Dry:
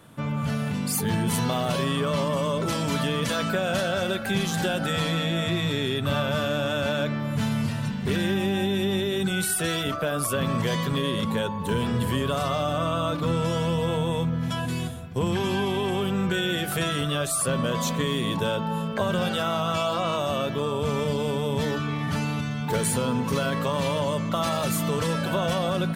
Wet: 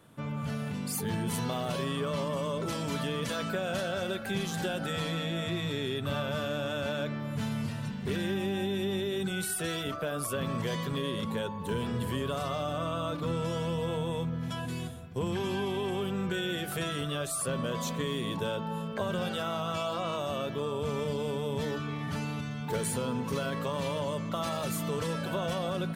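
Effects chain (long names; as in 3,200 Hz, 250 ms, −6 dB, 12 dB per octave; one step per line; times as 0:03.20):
parametric band 410 Hz +2.5 dB 0.7 octaves
level −7.5 dB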